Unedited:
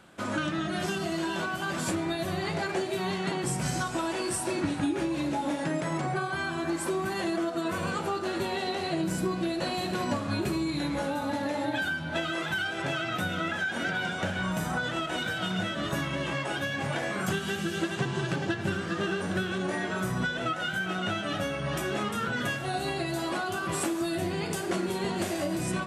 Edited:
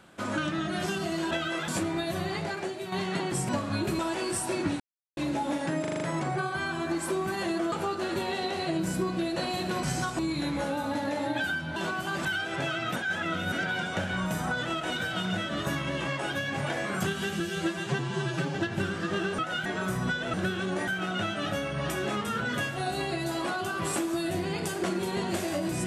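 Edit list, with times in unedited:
1.31–1.8 swap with 12.14–12.51
2.31–3.04 fade out, to -7.5 dB
3.61–3.97 swap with 10.07–10.57
4.78–5.15 mute
5.79 stutter 0.04 s, 6 plays
7.5–7.96 cut
13.22–13.78 reverse
17.66–18.43 stretch 1.5×
19.26–19.8 swap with 20.48–20.75

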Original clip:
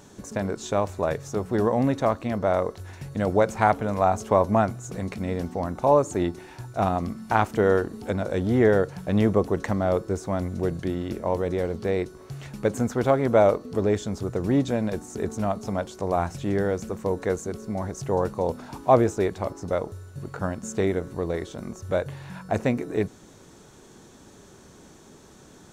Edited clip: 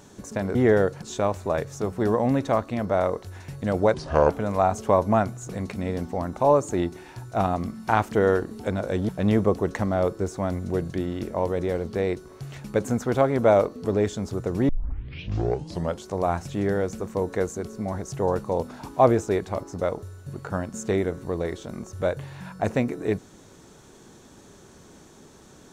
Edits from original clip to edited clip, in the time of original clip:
3.47–3.72 speed 70%
8.51–8.98 move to 0.55
14.58 tape start 1.33 s

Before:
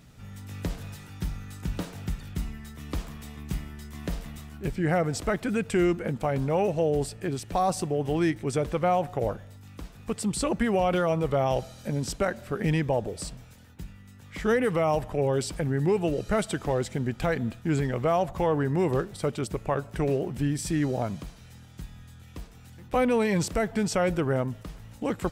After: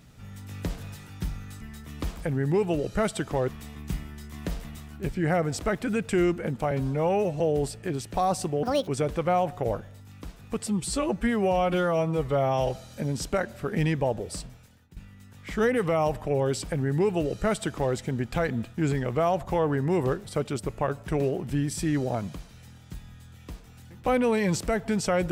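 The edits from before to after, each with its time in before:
1.61–2.52 cut
6.32–6.78 stretch 1.5×
8.01–8.44 speed 172%
10.23–11.6 stretch 1.5×
13.31–13.84 fade out, to -14 dB
15.52–16.82 copy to 3.09

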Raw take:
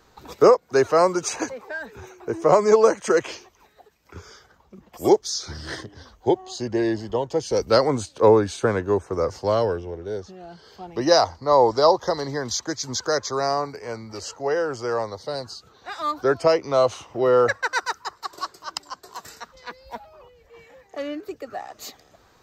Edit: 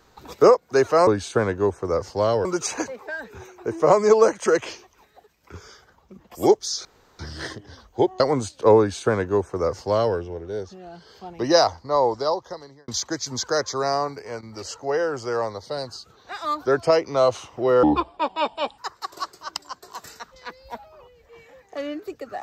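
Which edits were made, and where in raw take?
5.47 insert room tone 0.34 s
6.48–7.77 cut
8.35–9.73 copy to 1.07
11.14–12.45 fade out
13.55–14.43 dip -12.5 dB, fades 0.43 s logarithmic
17.4–17.99 speed 62%

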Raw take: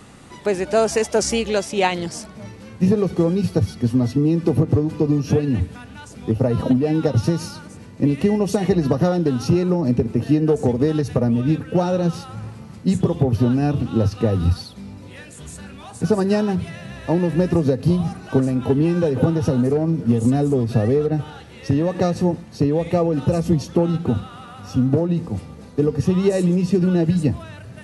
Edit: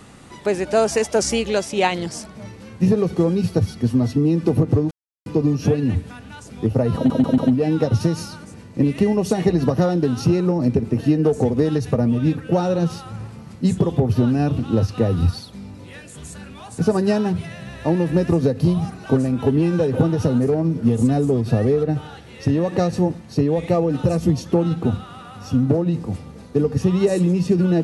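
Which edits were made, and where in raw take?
4.91 insert silence 0.35 s
6.61 stutter 0.14 s, 4 plays

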